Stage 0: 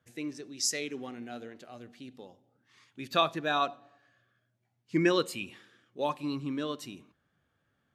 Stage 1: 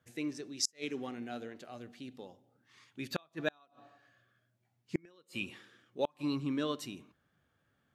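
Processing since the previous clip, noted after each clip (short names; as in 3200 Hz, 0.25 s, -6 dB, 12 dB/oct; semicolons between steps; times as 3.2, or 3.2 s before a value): flipped gate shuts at -18 dBFS, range -36 dB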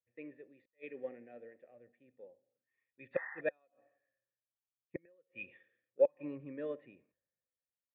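painted sound noise, 3.13–3.41, 750–2100 Hz -40 dBFS; vocal tract filter e; three-band expander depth 70%; gain +4.5 dB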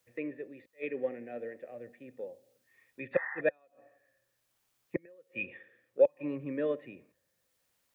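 three-band squash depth 40%; gain +9 dB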